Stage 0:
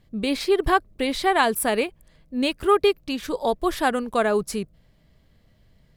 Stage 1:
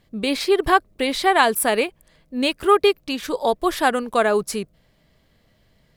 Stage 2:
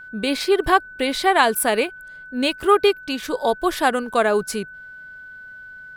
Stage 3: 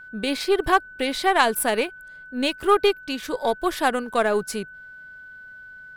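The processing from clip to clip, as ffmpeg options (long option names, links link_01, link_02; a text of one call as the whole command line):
ffmpeg -i in.wav -af "lowshelf=frequency=200:gain=-9,volume=4dB" out.wav
ffmpeg -i in.wav -af "aeval=exprs='val(0)+0.0141*sin(2*PI*1500*n/s)':channel_layout=same" out.wav
ffmpeg -i in.wav -af "aeval=exprs='0.891*(cos(1*acos(clip(val(0)/0.891,-1,1)))-cos(1*PI/2))+0.0631*(cos(3*acos(clip(val(0)/0.891,-1,1)))-cos(3*PI/2))+0.0158*(cos(8*acos(clip(val(0)/0.891,-1,1)))-cos(8*PI/2))':channel_layout=same,volume=-1dB" out.wav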